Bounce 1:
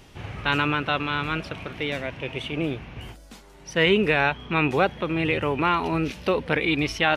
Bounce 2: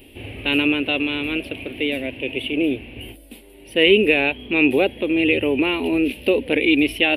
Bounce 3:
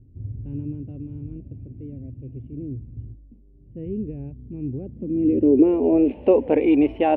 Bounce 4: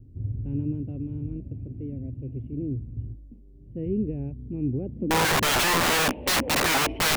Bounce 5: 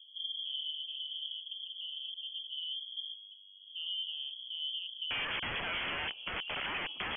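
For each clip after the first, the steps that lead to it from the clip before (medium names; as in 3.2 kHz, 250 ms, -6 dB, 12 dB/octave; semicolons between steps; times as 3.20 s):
FFT filter 110 Hz 0 dB, 160 Hz -11 dB, 260 Hz +10 dB, 550 Hz +4 dB, 1.3 kHz -15 dB, 2.7 kHz +10 dB, 6.4 kHz -18 dB, 10 kHz +12 dB
low-pass sweep 130 Hz -> 870 Hz, 4.82–6.16 s
wow and flutter 22 cents; integer overflow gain 19.5 dB; trim +2 dB
compression 2:1, threshold -29 dBFS, peak gain reduction 5 dB; frequency inversion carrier 3.3 kHz; trim -8.5 dB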